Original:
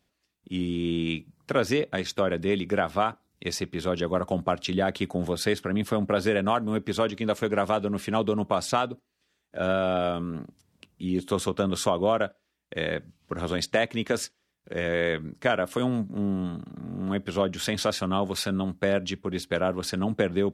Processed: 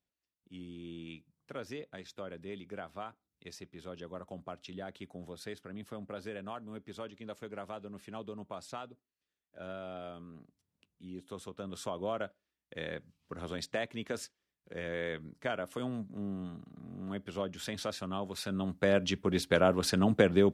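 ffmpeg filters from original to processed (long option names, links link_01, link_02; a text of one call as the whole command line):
ffmpeg -i in.wav -af "afade=type=in:start_time=11.53:duration=0.7:silence=0.446684,afade=type=in:start_time=18.38:duration=0.86:silence=0.281838" out.wav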